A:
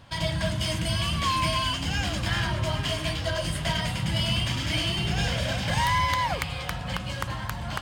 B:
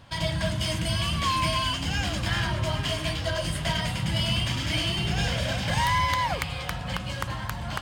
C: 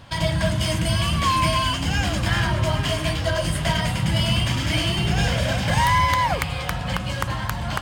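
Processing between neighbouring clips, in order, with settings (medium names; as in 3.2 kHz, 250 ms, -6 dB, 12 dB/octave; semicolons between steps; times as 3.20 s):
no audible change
dynamic bell 3.9 kHz, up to -4 dB, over -39 dBFS, Q 0.88; trim +6 dB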